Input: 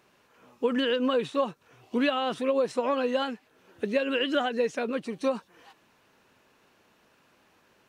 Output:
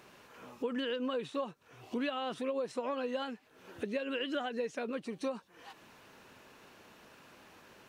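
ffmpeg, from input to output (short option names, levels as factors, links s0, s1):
-af "acompressor=threshold=0.00251:ratio=2,volume=2"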